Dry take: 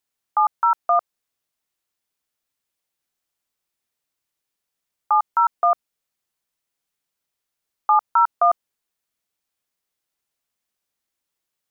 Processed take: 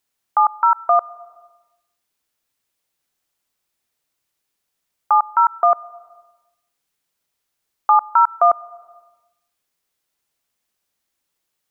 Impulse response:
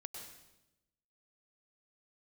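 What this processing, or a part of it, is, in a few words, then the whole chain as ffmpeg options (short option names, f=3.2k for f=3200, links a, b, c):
compressed reverb return: -filter_complex "[0:a]asplit=2[a][b];[1:a]atrim=start_sample=2205[c];[b][c]afir=irnorm=-1:irlink=0,acompressor=threshold=-34dB:ratio=6,volume=-3.5dB[d];[a][d]amix=inputs=2:normalize=0,volume=2.5dB"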